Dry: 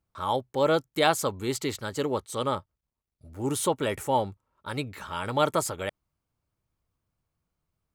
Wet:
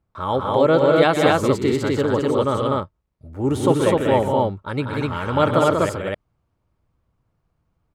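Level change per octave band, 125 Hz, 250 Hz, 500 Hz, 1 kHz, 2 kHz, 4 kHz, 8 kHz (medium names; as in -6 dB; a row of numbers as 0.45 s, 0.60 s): +12.0 dB, +11.5 dB, +10.5 dB, +7.0 dB, +7.5 dB, +3.5 dB, -2.5 dB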